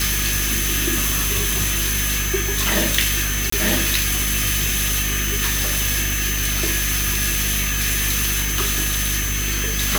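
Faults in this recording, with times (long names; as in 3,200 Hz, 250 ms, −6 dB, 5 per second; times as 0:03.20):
mains hum 50 Hz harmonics 6 −25 dBFS
whistle 6,200 Hz −27 dBFS
0:03.50–0:03.52: drop-out 24 ms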